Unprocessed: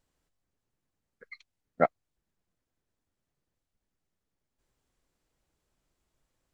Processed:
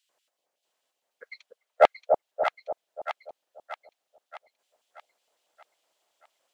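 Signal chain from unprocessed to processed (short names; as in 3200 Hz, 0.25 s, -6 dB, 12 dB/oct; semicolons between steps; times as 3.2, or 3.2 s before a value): LFO high-pass square 5.4 Hz 630–3000 Hz; in parallel at -3 dB: hard clip -15 dBFS, distortion -8 dB; 1.31–1.84 on the sum: rippled Chebyshev high-pass 420 Hz, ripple 3 dB; split-band echo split 860 Hz, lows 0.291 s, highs 0.629 s, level -4 dB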